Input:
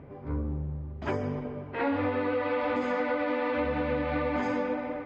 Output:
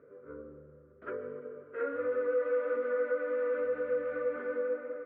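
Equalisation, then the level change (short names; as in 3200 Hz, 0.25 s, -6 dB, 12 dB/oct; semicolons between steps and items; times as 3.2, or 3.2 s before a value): double band-pass 820 Hz, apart 1.5 oct; air absorption 270 m; +2.5 dB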